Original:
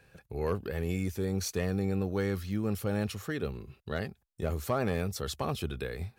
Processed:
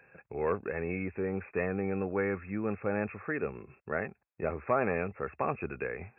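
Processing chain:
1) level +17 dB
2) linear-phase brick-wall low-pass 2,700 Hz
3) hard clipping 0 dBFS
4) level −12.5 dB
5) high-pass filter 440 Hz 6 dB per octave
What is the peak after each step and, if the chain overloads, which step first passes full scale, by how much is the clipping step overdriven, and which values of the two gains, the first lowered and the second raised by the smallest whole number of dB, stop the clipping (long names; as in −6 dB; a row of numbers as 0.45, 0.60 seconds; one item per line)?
−3.0, −2.5, −2.5, −15.0, −15.5 dBFS
no step passes full scale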